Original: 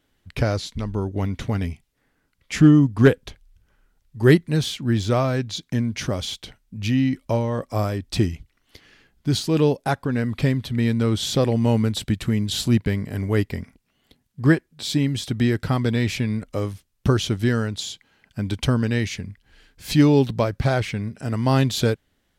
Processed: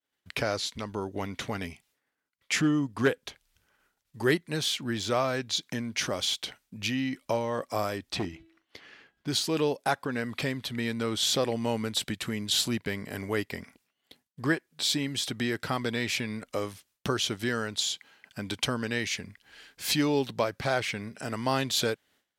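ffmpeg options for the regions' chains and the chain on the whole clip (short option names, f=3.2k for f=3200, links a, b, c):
-filter_complex "[0:a]asettb=1/sr,asplit=3[a][b][c];[a]atrim=end=8.124[d];[b]atrim=start=8.12:end=9.28,asetpts=PTS-STARTPTS,afade=t=in:d=0.004:c=qsin,afade=t=out:st=1.156:d=0.004:c=qsin,lowpass=f=2.2k:p=1,bandreject=f=327.4:t=h:w=4,bandreject=f=654.8:t=h:w=4,bandreject=f=982.2:t=h:w=4,bandreject=f=1.3096k:t=h:w=4,bandreject=f=1.637k:t=h:w=4,bandreject=f=1.9644k:t=h:w=4,bandreject=f=2.2918k:t=h:w=4,bandreject=f=2.6192k:t=h:w=4,bandreject=f=2.9466k:t=h:w=4,bandreject=f=3.274k:t=h:w=4,bandreject=f=3.6014k:t=h:w=4,bandreject=f=3.9288k:t=h:w=4,asoftclip=type=hard:threshold=-15dB[e];[c]atrim=start=9.276[f];[d][e]acrossfade=d=0.004:c1=hsin:c2=qsin[g];[g][f]acrossfade=d=0.004:c1=qsin:c2=hsin,acompressor=threshold=-36dB:ratio=1.5,agate=range=-33dB:threshold=-56dB:ratio=3:detection=peak,highpass=f=640:p=1,volume=5.5dB"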